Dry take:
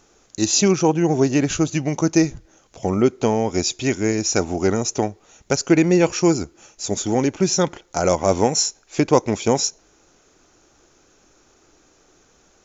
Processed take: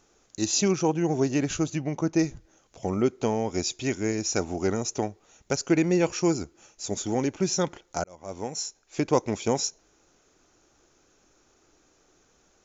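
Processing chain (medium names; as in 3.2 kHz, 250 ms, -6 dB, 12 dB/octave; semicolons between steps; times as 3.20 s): 1.75–2.19 s: low-pass 2.4 kHz 6 dB/octave; 8.04–9.14 s: fade in; trim -7 dB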